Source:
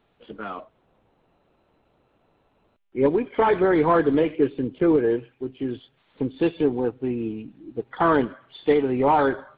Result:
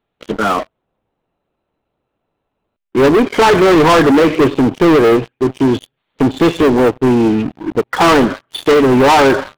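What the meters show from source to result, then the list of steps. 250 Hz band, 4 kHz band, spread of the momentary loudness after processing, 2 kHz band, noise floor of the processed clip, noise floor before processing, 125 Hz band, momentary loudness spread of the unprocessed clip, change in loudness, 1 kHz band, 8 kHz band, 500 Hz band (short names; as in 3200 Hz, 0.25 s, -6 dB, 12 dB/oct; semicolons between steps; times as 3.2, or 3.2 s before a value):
+12.0 dB, +21.0 dB, 11 LU, +14.0 dB, -74 dBFS, -67 dBFS, +13.0 dB, 16 LU, +10.5 dB, +11.0 dB, n/a, +10.5 dB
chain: sample leveller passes 5; gain +2 dB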